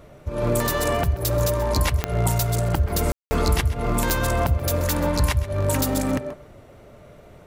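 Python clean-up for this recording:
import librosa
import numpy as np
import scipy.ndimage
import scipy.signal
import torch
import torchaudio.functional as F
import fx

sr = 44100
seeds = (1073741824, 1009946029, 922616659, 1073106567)

y = fx.fix_declick_ar(x, sr, threshold=10.0)
y = fx.fix_ambience(y, sr, seeds[0], print_start_s=6.6, print_end_s=7.1, start_s=3.12, end_s=3.31)
y = fx.fix_echo_inverse(y, sr, delay_ms=131, level_db=-16.0)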